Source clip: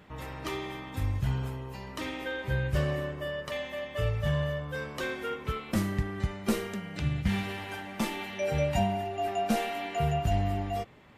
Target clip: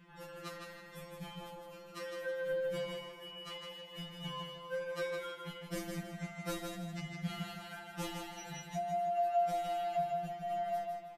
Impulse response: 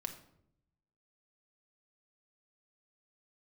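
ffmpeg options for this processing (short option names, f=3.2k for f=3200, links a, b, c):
-filter_complex "[0:a]asettb=1/sr,asplit=3[a][b][c];[a]atrim=end=8.604[d];[b]atrim=start=8.6:end=10.51,asetpts=PTS-STARTPTS,afade=t=in:d=0.004:c=qsin,afade=t=out:st=1.906:d=0.004:c=qsin,acompressor=threshold=-30dB:ratio=6[e];[c]atrim=start=10.506[f];[d][e]acrossfade=d=0.004:c1=hsin:c2=qsin[g];[g][f]acrossfade=d=0.004:c1=qsin:c2=hsin,asplit=2[h][i];[i]aecho=0:1:159|318|477|636:0.562|0.186|0.0612|0.0202[j];[h][j]amix=inputs=2:normalize=0,afftfilt=real='re*2.83*eq(mod(b,8),0)':imag='im*2.83*eq(mod(b,8),0)':win_size=2048:overlap=0.75,volume=-4.5dB"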